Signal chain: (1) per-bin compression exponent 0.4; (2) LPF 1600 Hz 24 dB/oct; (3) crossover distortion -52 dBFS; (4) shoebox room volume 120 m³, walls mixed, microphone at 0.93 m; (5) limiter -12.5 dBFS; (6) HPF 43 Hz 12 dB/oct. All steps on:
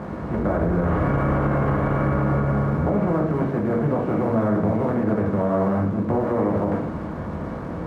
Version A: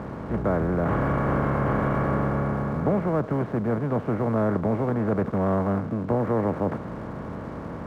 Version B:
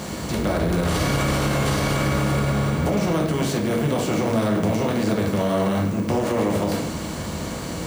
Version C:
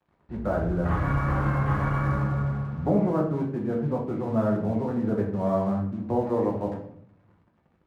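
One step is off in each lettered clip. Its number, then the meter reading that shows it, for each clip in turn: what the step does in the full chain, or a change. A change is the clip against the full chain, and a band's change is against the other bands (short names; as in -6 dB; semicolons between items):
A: 4, momentary loudness spread change +2 LU; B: 2, 2 kHz band +5.0 dB; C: 1, crest factor change +2.5 dB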